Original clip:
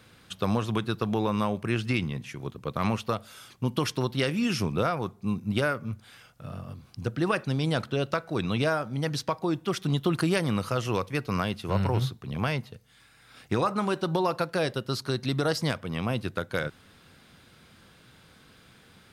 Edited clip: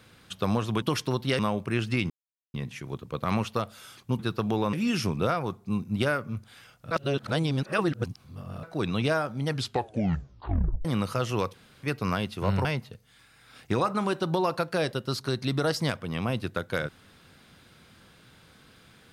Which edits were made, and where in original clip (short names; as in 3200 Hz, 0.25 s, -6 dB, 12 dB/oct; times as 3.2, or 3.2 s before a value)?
0.82–1.36 swap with 3.72–4.29
2.07 insert silence 0.44 s
6.47–8.19 reverse
9.03 tape stop 1.38 s
11.1 insert room tone 0.29 s
11.92–12.46 cut